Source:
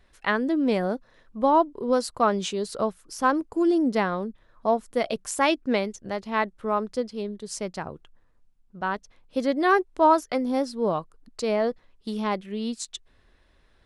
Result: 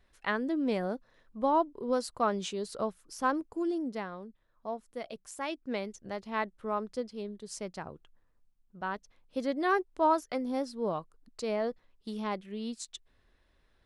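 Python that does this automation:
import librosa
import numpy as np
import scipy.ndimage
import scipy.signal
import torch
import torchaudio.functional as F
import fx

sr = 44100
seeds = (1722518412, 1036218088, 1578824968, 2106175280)

y = fx.gain(x, sr, db=fx.line((3.34, -7.0), (4.11, -14.5), (5.46, -14.5), (5.97, -7.5)))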